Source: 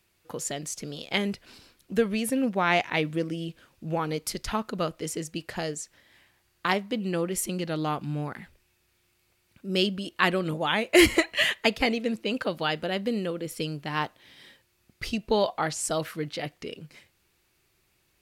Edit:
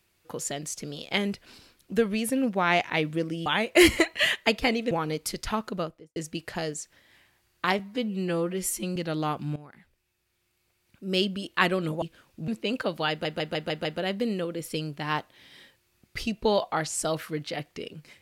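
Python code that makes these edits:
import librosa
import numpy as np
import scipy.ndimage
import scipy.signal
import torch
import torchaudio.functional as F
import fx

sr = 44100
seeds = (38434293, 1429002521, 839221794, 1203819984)

y = fx.studio_fade_out(x, sr, start_s=4.68, length_s=0.49)
y = fx.edit(y, sr, fx.swap(start_s=3.46, length_s=0.46, other_s=10.64, other_length_s=1.45),
    fx.stretch_span(start_s=6.8, length_s=0.78, factor=1.5),
    fx.fade_in_from(start_s=8.18, length_s=1.79, floor_db=-16.0),
    fx.stutter(start_s=12.71, slice_s=0.15, count=6), tone=tone)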